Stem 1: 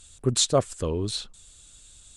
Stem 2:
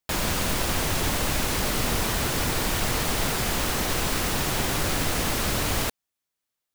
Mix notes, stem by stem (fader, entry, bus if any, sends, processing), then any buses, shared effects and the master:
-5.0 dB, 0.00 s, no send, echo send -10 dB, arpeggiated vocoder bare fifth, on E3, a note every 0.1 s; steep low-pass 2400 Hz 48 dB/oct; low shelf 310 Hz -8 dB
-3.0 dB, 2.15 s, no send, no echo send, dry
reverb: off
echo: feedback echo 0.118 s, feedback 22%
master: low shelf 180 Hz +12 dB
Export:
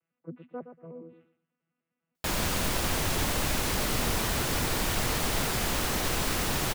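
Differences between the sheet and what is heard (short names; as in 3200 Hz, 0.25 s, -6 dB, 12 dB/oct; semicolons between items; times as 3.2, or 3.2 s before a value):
stem 1 -5.0 dB -> -14.0 dB; master: missing low shelf 180 Hz +12 dB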